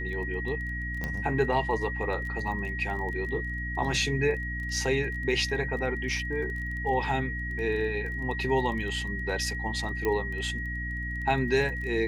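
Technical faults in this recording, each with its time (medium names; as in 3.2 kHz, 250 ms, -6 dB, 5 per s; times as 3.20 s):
crackle 17 per s -36 dBFS
hum 60 Hz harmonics 5 -35 dBFS
whine 1.9 kHz -34 dBFS
1.04 s: pop -18 dBFS
10.05 s: pop -16 dBFS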